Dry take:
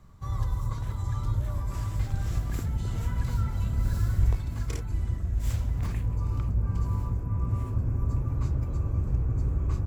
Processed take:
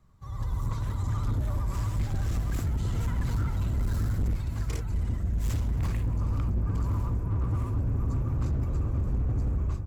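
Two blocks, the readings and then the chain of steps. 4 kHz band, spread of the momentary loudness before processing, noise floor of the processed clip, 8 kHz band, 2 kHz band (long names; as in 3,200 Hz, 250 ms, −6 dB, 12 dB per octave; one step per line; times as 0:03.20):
+0.5 dB, 4 LU, −34 dBFS, can't be measured, +1.0 dB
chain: automatic gain control gain up to 11 dB
pitch vibrato 15 Hz 65 cents
hard clipping −15 dBFS, distortion −11 dB
level −8.5 dB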